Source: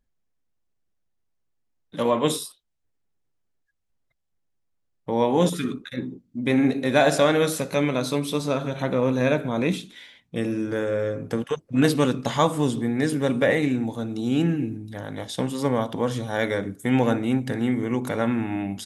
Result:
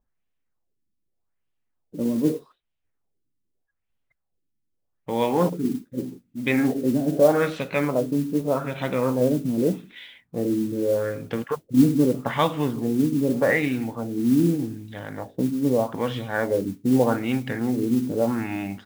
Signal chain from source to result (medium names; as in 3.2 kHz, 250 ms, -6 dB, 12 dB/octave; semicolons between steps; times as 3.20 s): LFO low-pass sine 0.82 Hz 250–3100 Hz; modulation noise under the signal 23 dB; trim -2 dB